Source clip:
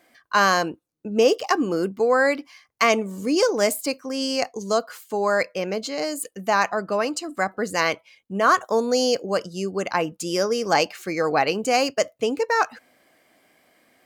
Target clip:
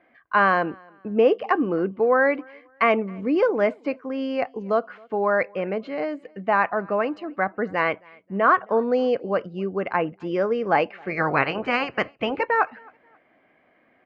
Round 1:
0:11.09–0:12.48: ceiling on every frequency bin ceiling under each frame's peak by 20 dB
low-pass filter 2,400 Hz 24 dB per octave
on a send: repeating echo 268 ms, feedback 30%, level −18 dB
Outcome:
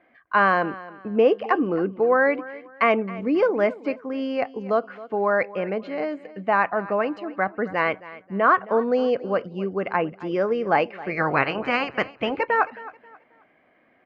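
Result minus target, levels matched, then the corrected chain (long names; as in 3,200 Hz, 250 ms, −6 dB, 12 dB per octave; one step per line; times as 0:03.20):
echo-to-direct +9.5 dB
0:11.09–0:12.48: ceiling on every frequency bin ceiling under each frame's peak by 20 dB
low-pass filter 2,400 Hz 24 dB per octave
on a send: repeating echo 268 ms, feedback 30%, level −27.5 dB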